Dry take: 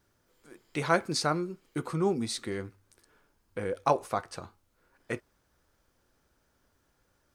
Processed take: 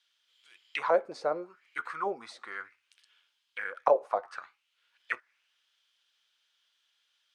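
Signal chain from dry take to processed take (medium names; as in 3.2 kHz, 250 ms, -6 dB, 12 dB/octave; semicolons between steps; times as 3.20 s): tilt shelf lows -7 dB, about 640 Hz; auto-wah 530–3300 Hz, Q 4.4, down, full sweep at -24 dBFS; trim +7.5 dB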